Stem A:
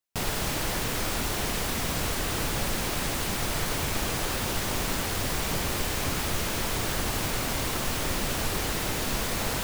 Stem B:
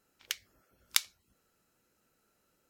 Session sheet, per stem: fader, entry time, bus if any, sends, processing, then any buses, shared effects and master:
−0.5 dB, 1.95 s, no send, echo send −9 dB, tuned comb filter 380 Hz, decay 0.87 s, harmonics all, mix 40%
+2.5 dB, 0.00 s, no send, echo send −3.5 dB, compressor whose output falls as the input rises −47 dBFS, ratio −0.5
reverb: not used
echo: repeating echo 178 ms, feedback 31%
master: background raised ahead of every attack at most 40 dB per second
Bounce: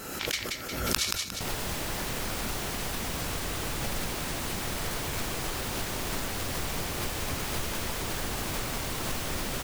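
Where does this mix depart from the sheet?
stem A: entry 1.95 s → 1.25 s
stem B +2.5 dB → +12.5 dB

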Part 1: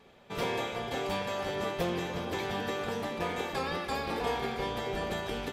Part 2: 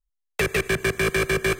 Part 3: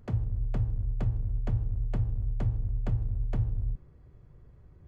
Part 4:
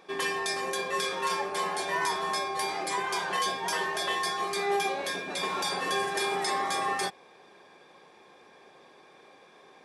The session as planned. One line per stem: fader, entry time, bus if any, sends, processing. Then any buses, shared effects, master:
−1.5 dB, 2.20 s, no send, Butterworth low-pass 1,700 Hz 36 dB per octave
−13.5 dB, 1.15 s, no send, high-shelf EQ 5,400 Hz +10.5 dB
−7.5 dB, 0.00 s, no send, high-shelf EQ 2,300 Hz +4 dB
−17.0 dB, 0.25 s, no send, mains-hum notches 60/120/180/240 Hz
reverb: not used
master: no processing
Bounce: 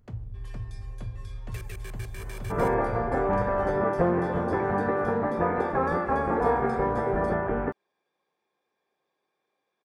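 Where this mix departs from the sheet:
stem 1 −1.5 dB → +8.5 dB
stem 2 −13.5 dB → −23.5 dB
stem 4 −17.0 dB → −25.0 dB

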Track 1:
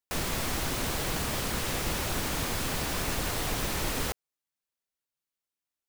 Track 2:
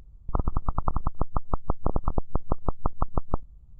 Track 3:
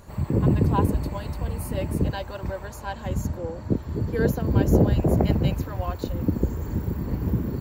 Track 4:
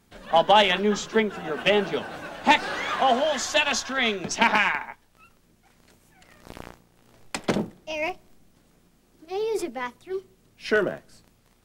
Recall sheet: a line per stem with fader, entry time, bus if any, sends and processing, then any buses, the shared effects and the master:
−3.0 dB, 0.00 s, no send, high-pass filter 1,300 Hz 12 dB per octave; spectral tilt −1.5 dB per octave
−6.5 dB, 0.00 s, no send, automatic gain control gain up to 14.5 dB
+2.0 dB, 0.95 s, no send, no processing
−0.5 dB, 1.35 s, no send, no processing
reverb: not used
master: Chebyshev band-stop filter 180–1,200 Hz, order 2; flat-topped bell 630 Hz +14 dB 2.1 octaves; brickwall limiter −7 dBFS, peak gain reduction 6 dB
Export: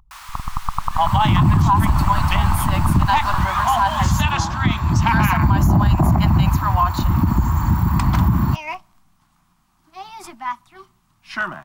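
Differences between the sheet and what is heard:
stem 3 +2.0 dB → +12.5 dB
stem 4: entry 1.35 s → 0.65 s

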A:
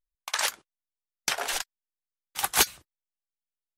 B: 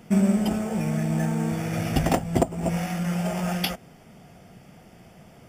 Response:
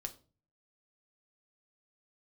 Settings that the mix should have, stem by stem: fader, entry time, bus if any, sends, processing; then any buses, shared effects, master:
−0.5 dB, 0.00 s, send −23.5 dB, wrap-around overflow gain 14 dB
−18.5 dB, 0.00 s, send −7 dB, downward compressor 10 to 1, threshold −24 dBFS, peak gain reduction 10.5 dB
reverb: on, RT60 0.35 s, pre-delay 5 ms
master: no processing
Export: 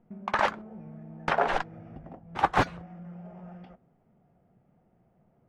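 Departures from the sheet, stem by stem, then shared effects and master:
stem A −0.5 dB → +10.5 dB
master: extra low-pass filter 1,100 Hz 12 dB per octave

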